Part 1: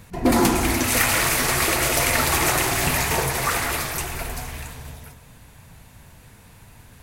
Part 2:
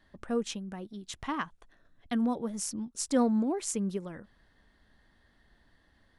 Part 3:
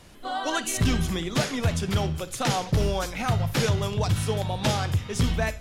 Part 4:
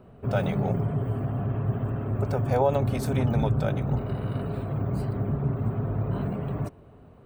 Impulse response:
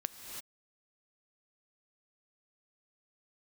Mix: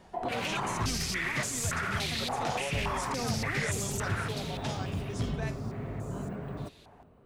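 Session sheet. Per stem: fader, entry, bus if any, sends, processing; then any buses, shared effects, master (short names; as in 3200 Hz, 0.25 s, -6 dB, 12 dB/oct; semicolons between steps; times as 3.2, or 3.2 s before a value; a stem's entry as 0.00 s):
+1.5 dB, 0.00 s, bus A, no send, stepped band-pass 3.5 Hz 760–7100 Hz
-3.5 dB, 0.00 s, bus A, no send, Bessel high-pass 420 Hz
-11.5 dB, 0.00 s, no bus, no send, LPF 9200 Hz
-10.0 dB, 0.00 s, bus A, no send, bell 110 Hz -5.5 dB 0.8 oct
bus A: 0.0 dB, vocal rider within 4 dB 0.5 s; limiter -24 dBFS, peak gain reduction 10.5 dB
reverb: off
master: dry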